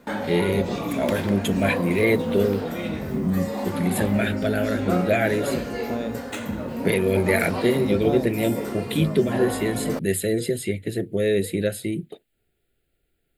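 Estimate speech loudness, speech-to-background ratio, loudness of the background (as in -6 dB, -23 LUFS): -24.0 LUFS, 4.0 dB, -28.0 LUFS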